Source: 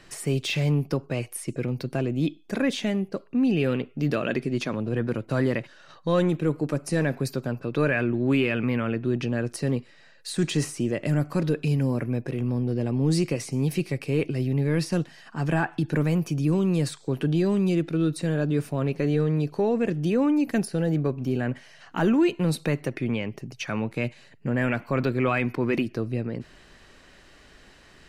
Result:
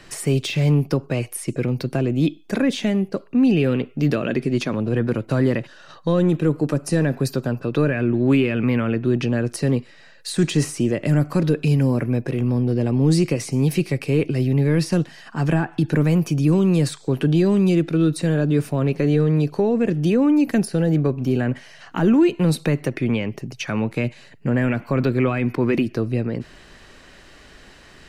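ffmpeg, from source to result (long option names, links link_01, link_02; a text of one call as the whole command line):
ffmpeg -i in.wav -filter_complex "[0:a]asettb=1/sr,asplit=3[link_01][link_02][link_03];[link_01]atrim=end=5.534[link_04];[link_02]atrim=start=5.53:end=7.93,asetpts=PTS-STARTPTS,afade=type=in:duration=0.004:curve=qsin,afade=type=out:start_time=2.396:duration=0.004:curve=qsin,bandreject=frequency=2200:width=12[link_05];[link_03]atrim=start=7.926[link_06];[link_04][link_05]acrossfade=duration=0.004:curve1=hsin:curve2=qsin[link_07];[link_07][link_06]acrossfade=duration=0.004:curve1=qsin:curve2=hsin,acrossover=split=440[link_08][link_09];[link_09]acompressor=threshold=-31dB:ratio=6[link_10];[link_08][link_10]amix=inputs=2:normalize=0,volume=6dB" out.wav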